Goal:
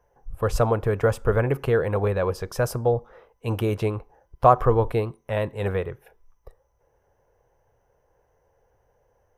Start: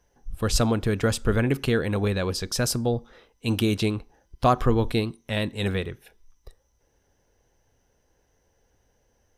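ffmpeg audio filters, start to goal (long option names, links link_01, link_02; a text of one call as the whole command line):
ffmpeg -i in.wav -af "equalizer=frequency=125:width_type=o:width=1:gain=4,equalizer=frequency=250:width_type=o:width=1:gain=-9,equalizer=frequency=500:width_type=o:width=1:gain=8,equalizer=frequency=1000:width_type=o:width=1:gain=7,equalizer=frequency=4000:width_type=o:width=1:gain=-12,equalizer=frequency=8000:width_type=o:width=1:gain=-7,volume=-1.5dB" out.wav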